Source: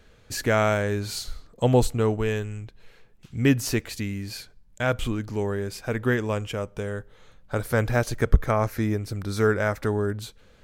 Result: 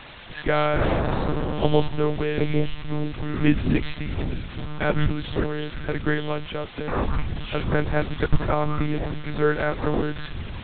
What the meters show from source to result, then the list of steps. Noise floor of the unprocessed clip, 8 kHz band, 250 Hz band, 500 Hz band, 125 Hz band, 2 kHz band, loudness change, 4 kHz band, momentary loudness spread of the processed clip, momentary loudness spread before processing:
-55 dBFS, under -40 dB, +2.0 dB, 0.0 dB, 0.0 dB, +1.0 dB, 0.0 dB, +1.5 dB, 9 LU, 13 LU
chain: echoes that change speed 88 ms, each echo -6 st, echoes 2; requantised 6-bit, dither triangular; monotone LPC vocoder at 8 kHz 150 Hz

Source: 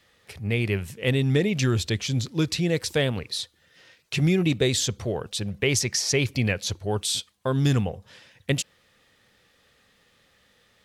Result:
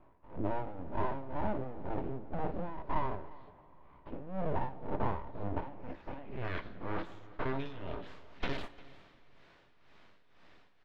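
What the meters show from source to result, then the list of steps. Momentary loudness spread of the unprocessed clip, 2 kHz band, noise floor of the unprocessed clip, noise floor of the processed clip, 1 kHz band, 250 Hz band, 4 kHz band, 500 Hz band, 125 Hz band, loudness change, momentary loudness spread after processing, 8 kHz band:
9 LU, -16.0 dB, -63 dBFS, -63 dBFS, +2.0 dB, -14.5 dB, -25.5 dB, -12.5 dB, -18.0 dB, -14.5 dB, 13 LU, under -40 dB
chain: spectral dilation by 0.12 s; limiter -13.5 dBFS, peak gain reduction 10.5 dB; compressor 6:1, threshold -30 dBFS, peak gain reduction 11.5 dB; tremolo 2 Hz, depth 80%; low-pass sweep 520 Hz -> 4400 Hz, 5.1–8.25; full-wave rectifier; air absorption 350 m; on a send: echo 0.351 s -21 dB; on the sum: two-slope reverb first 0.24 s, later 3.7 s, from -19 dB, DRR 9 dB; gain +1.5 dB

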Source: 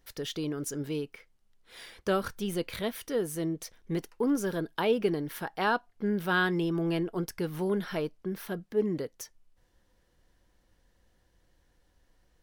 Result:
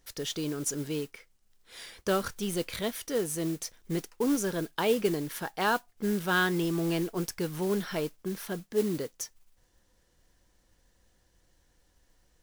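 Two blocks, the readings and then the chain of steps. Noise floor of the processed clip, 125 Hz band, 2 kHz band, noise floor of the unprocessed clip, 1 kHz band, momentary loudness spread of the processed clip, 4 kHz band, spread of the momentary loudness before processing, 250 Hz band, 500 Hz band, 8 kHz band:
-69 dBFS, 0.0 dB, +0.5 dB, -69 dBFS, 0.0 dB, 10 LU, +2.5 dB, 10 LU, 0.0 dB, 0.0 dB, +6.5 dB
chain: bell 7200 Hz +7.5 dB 1.2 oct; modulation noise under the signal 17 dB

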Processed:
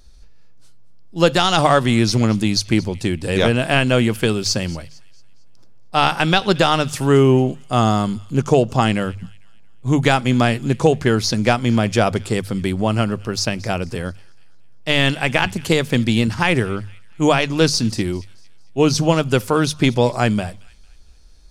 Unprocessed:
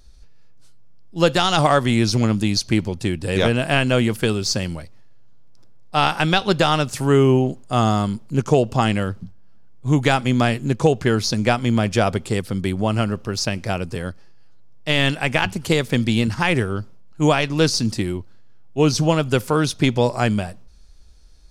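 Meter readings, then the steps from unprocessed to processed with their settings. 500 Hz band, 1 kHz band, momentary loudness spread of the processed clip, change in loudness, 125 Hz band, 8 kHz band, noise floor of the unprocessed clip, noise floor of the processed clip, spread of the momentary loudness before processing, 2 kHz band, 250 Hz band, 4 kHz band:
+2.0 dB, +2.0 dB, 9 LU, +2.0 dB, +1.0 dB, +2.0 dB, -42 dBFS, -38 dBFS, 9 LU, +2.0 dB, +2.0 dB, +2.0 dB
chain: notches 50/100/150 Hz; thin delay 0.226 s, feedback 40%, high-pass 2100 Hz, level -20 dB; gain +2 dB

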